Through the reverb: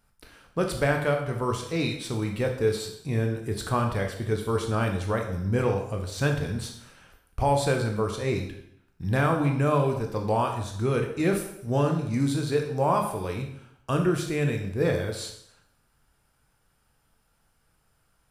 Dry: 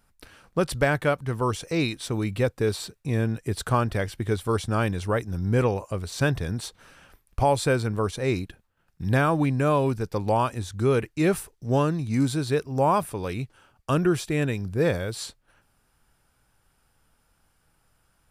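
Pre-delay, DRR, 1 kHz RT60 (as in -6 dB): 7 ms, 2.5 dB, 0.70 s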